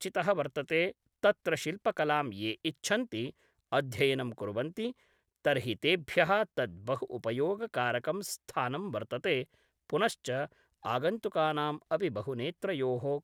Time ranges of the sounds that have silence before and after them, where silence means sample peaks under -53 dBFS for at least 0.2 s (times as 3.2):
1.23–3.31
3.72–4.92
5.45–9.54
9.9–10.52